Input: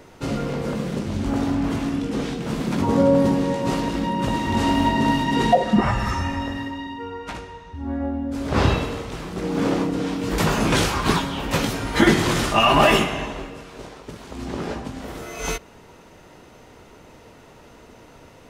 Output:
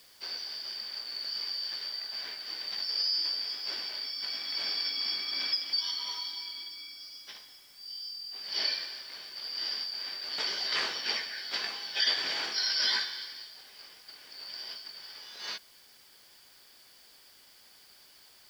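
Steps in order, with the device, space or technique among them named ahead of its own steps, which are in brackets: 7.19–8.44 s: Chebyshev high-pass 270 Hz, order 2; split-band scrambled radio (four frequency bands reordered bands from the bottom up 4321; band-pass 320–2900 Hz; white noise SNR 25 dB); trim -4.5 dB

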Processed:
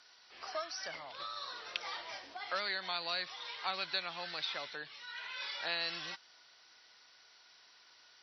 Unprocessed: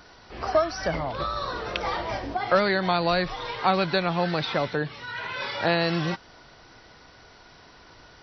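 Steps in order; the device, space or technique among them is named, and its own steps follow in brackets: piezo pickup straight into a mixer (low-pass 5.1 kHz 12 dB/octave; differentiator); trim +1 dB

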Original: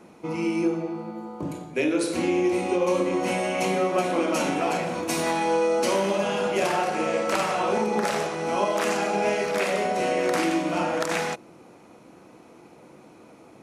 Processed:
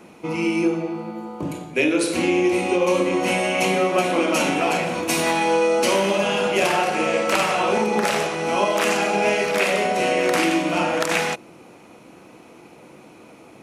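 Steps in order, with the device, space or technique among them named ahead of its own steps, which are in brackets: presence and air boost (peaking EQ 2.7 kHz +5.5 dB 0.81 oct; treble shelf 11 kHz +6.5 dB); trim +3.5 dB

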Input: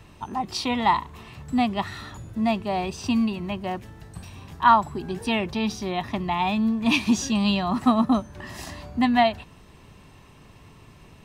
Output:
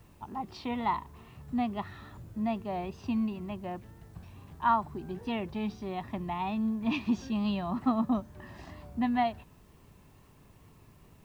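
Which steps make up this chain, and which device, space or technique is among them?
cassette deck with a dirty head (tape spacing loss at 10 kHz 25 dB; wow and flutter; white noise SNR 37 dB); trim -7 dB

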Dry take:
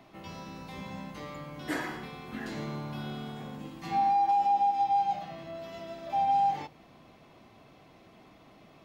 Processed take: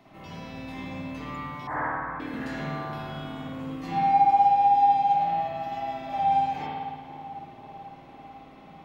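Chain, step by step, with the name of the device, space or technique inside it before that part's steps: dub delay into a spring reverb (filtered feedback delay 497 ms, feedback 77%, low-pass 1.2 kHz, level -13 dB; spring tank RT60 1.5 s, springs 53 ms, chirp 70 ms, DRR -6.5 dB); 1.67–2.20 s: FFT filter 140 Hz 0 dB, 340 Hz -14 dB, 870 Hz +10 dB, 1.9 kHz -2 dB, 2.9 kHz -25 dB; trim -2 dB

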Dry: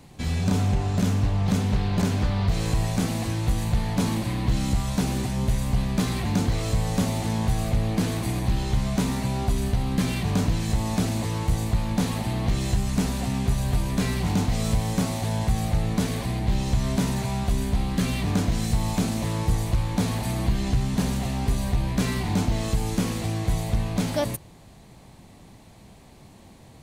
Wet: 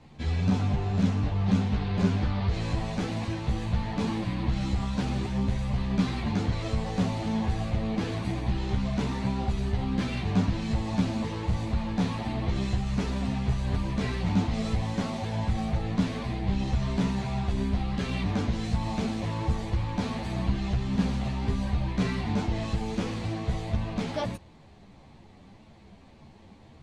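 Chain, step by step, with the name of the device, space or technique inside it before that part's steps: string-machine ensemble chorus (three-phase chorus; low-pass 4.3 kHz 12 dB/octave)

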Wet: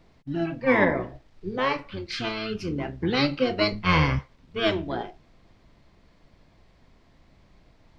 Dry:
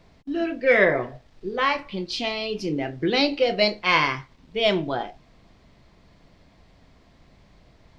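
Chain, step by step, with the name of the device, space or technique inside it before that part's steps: 3.72–4.19 s: resonant low shelf 310 Hz +12.5 dB, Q 1.5; octave pedal (harmony voices -12 st -3 dB); trim -4.5 dB

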